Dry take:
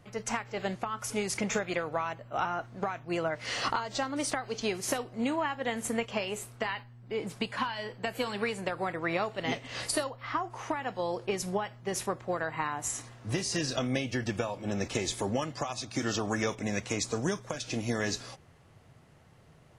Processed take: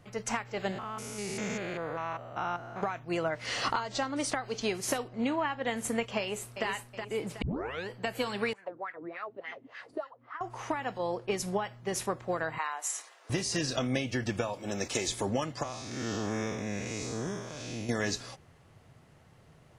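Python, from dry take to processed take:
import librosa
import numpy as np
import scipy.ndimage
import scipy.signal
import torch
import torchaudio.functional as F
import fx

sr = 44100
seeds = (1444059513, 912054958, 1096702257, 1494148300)

y = fx.spec_steps(x, sr, hold_ms=200, at=(0.71, 2.81), fade=0.02)
y = fx.lowpass(y, sr, hz=10000.0, slope=12, at=(3.87, 4.45))
y = fx.lowpass(y, sr, hz=5100.0, slope=12, at=(5.08, 5.67))
y = fx.echo_throw(y, sr, start_s=6.19, length_s=0.48, ms=370, feedback_pct=40, wet_db=-6.0)
y = fx.wah_lfo(y, sr, hz=3.4, low_hz=250.0, high_hz=1900.0, q=3.8, at=(8.53, 10.41))
y = fx.band_widen(y, sr, depth_pct=70, at=(10.98, 11.4))
y = fx.bessel_highpass(y, sr, hz=710.0, order=8, at=(12.58, 13.3))
y = fx.bass_treble(y, sr, bass_db=-6, treble_db=6, at=(14.53, 15.08))
y = fx.spec_blur(y, sr, span_ms=208.0, at=(15.63, 17.89))
y = fx.edit(y, sr, fx.tape_start(start_s=7.42, length_s=0.47), tone=tone)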